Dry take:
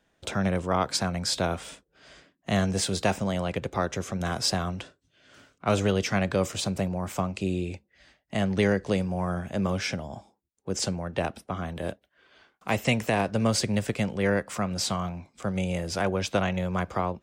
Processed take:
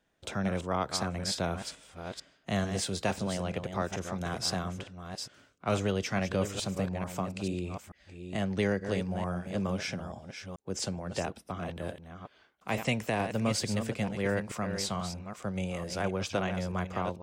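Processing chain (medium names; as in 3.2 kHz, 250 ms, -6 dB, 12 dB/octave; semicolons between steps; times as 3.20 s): chunks repeated in reverse 440 ms, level -8 dB; trim -5.5 dB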